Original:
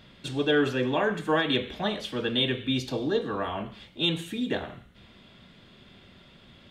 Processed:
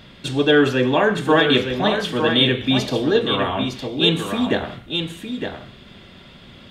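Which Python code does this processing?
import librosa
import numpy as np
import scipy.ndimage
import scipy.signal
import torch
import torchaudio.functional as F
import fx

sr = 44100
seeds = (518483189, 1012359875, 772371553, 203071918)

y = x + 10.0 ** (-6.5 / 20.0) * np.pad(x, (int(910 * sr / 1000.0), 0))[:len(x)]
y = y * librosa.db_to_amplitude(8.5)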